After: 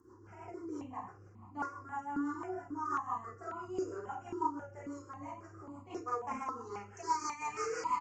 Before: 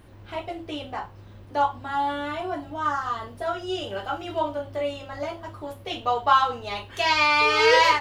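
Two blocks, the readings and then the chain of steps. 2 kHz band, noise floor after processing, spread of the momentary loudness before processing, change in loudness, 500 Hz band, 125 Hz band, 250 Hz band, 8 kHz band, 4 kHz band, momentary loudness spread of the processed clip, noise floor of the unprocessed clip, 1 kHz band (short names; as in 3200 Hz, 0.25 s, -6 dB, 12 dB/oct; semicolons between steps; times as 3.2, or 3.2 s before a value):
-23.0 dB, -57 dBFS, 17 LU, -15.5 dB, -16.0 dB, -12.5 dB, -6.0 dB, -8.0 dB, under -25 dB, 13 LU, -46 dBFS, -14.0 dB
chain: one-sided fold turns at -17 dBFS; compressor 6:1, threshold -23 dBFS, peak gain reduction 9 dB; HPF 200 Hz 12 dB/oct; outdoor echo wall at 73 m, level -20 dB; downsampling 16000 Hz; band shelf 2500 Hz -15.5 dB; fixed phaser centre 1500 Hz, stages 4; comb 2.9 ms, depth 36%; Schroeder reverb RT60 0.36 s, combs from 31 ms, DRR -1.5 dB; rotary speaker horn 6 Hz; step phaser 3.7 Hz 660–1600 Hz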